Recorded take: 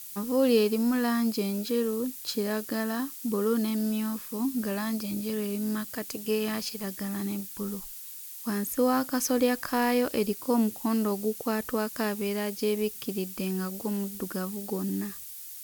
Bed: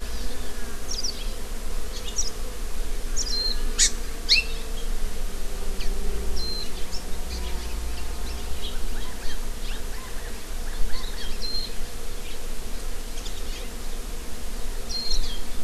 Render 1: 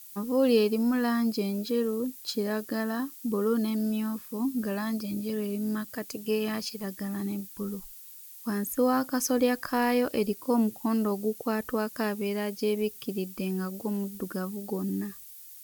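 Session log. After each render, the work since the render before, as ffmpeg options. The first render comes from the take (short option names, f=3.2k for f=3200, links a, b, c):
-af "afftdn=nr=7:nf=-42"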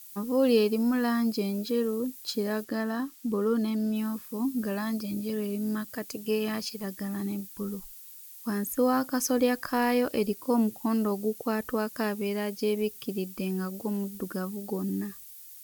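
-filter_complex "[0:a]asettb=1/sr,asplit=3[a][b][c];[a]atrim=end=2.644[d];[b]atrim=start=2.64:end=3.96,asetpts=PTS-STARTPTS,afade=t=in:d=0.004:c=qsin,afade=t=out:st=1.316:d=0.004:c=qsin,highshelf=f=7.7k:g=-7.5[e];[c]atrim=start=3.956[f];[d][e]acrossfade=d=0.004:c1=hsin:c2=qsin[g];[g][f]acrossfade=d=0.004:c1=qsin:c2=hsin"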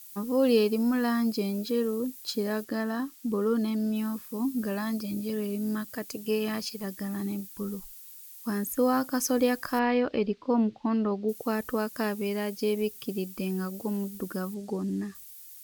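-filter_complex "[0:a]asettb=1/sr,asplit=3[a][b][c];[a]atrim=end=9.794[d];[b]atrim=start=9.79:end=11.29,asetpts=PTS-STARTPTS,afade=t=in:d=0.004:c=qsin,afade=t=out:st=1.496:d=0.004:c=qsin,lowpass=f=4k:w=0.5412,lowpass=f=4k:w=1.3066[e];[c]atrim=start=11.286[f];[d][e]acrossfade=d=0.004:c1=hsin:c2=qsin[g];[g][f]acrossfade=d=0.004:c1=qsin:c2=hsin,asettb=1/sr,asplit=3[h][i][j];[h]atrim=end=14.544[k];[i]atrim=start=14.54:end=15.15,asetpts=PTS-STARTPTS,afade=t=in:d=0.004:c=qsin,afade=t=out:st=0.606:d=0.004:c=qsin,lowpass=7.4k[l];[j]atrim=start=15.146[m];[k][l]acrossfade=d=0.004:c1=hsin:c2=qsin[n];[n][m]acrossfade=d=0.004:c1=qsin:c2=hsin"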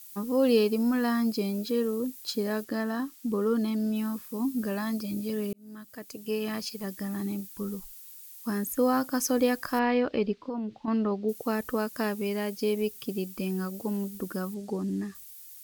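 -filter_complex "[0:a]asettb=1/sr,asplit=3[a][b][c];[a]atrim=end=10.414[d];[b]atrim=start=10.41:end=10.88,asetpts=PTS-STARTPTS,afade=t=in:d=0.004:c=qsin,afade=t=out:st=0.466:d=0.004:c=qsin,acompressor=threshold=-29dB:ratio=10:attack=3.2:release=140:knee=1:detection=peak[e];[c]atrim=start=10.876[f];[d][e]acrossfade=d=0.004:c1=hsin:c2=qsin[g];[g][f]acrossfade=d=0.004:c1=qsin:c2=hsin,asplit=2[h][i];[h]atrim=end=5.53,asetpts=PTS-STARTPTS,afade=t=out:st=5.526:d=0.004:c=hsin[j];[i]atrim=start=5.53,asetpts=PTS-STARTPTS,afade=t=in:d=1.55:c=qsin[k];[j][k]concat=n=2:v=0:a=1"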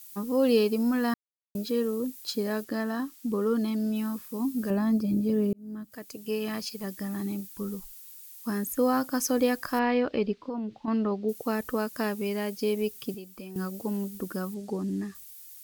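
-filter_complex "[0:a]asettb=1/sr,asplit=3[a][b][c];[a]atrim=end=4.704[d];[b]atrim=start=4.7:end=5.92,asetpts=PTS-STARTPTS,afade=t=in:d=0.004:c=qsin,afade=t=out:st=1.216:d=0.004:c=qsin,tiltshelf=f=910:g=7.5[e];[c]atrim=start=5.916[f];[d][e]acrossfade=d=0.004:c1=hsin:c2=qsin[g];[g][f]acrossfade=d=0.004:c1=qsin:c2=hsin,asettb=1/sr,asplit=3[h][i][j];[h]atrim=end=13.144[k];[i]atrim=start=13.14:end=13.56,asetpts=PTS-STARTPTS,afade=t=in:d=0.004:c=qsin,afade=t=out:st=0.416:d=0.004:c=qsin,acrossover=split=430|1300[l][m][n];[l]acompressor=threshold=-45dB:ratio=4[o];[m]acompressor=threshold=-48dB:ratio=4[p];[n]acompressor=threshold=-51dB:ratio=4[q];[o][p][q]amix=inputs=3:normalize=0[r];[j]atrim=start=13.556[s];[k][r]acrossfade=d=0.004:c1=hsin:c2=qsin[t];[t][s]acrossfade=d=0.004:c1=qsin:c2=hsin,asplit=3[u][v][w];[u]atrim=end=1.14,asetpts=PTS-STARTPTS,afade=t=out:st=1.136:d=0.004:c=hsin[x];[v]atrim=start=1.14:end=1.55,asetpts=PTS-STARTPTS,volume=0[y];[w]atrim=start=1.55,asetpts=PTS-STARTPTS,afade=t=in:d=0.004:c=hsin[z];[x][y][z]concat=n=3:v=0:a=1"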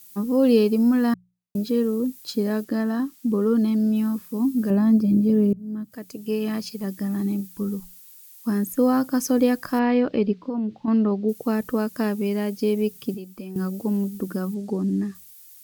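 -af "equalizer=f=190:w=0.5:g=8,bandreject=f=60:t=h:w=6,bandreject=f=120:t=h:w=6,bandreject=f=180:t=h:w=6"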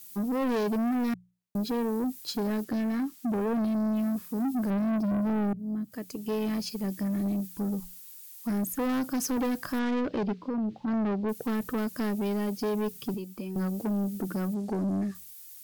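-af "asoftclip=type=tanh:threshold=-25.5dB"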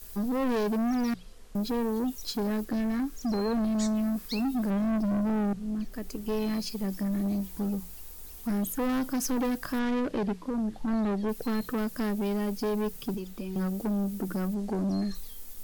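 -filter_complex "[1:a]volume=-20dB[a];[0:a][a]amix=inputs=2:normalize=0"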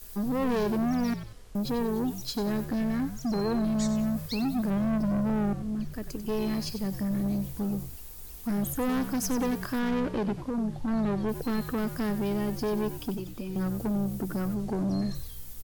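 -filter_complex "[0:a]asplit=5[a][b][c][d][e];[b]adelay=94,afreqshift=-63,volume=-11dB[f];[c]adelay=188,afreqshift=-126,volume=-19.4dB[g];[d]adelay=282,afreqshift=-189,volume=-27.8dB[h];[e]adelay=376,afreqshift=-252,volume=-36.2dB[i];[a][f][g][h][i]amix=inputs=5:normalize=0"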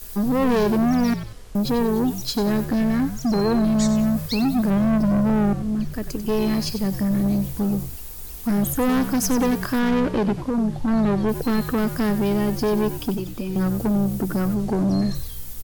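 -af "volume=8dB"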